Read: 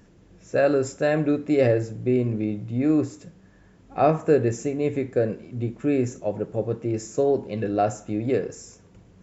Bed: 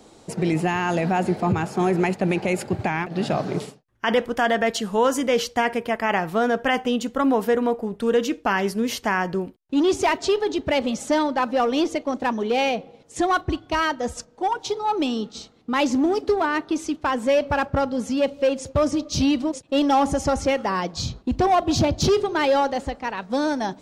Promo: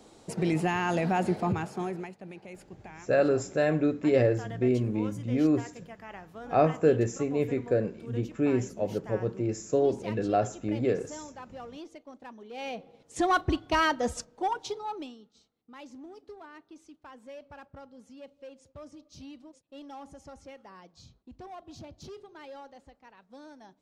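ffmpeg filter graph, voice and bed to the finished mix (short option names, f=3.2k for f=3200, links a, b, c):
-filter_complex "[0:a]adelay=2550,volume=-3.5dB[a];[1:a]volume=15dB,afade=t=out:st=1.33:d=0.79:silence=0.133352,afade=t=in:st=12.51:d=0.96:silence=0.1,afade=t=out:st=14.1:d=1.07:silence=0.0668344[b];[a][b]amix=inputs=2:normalize=0"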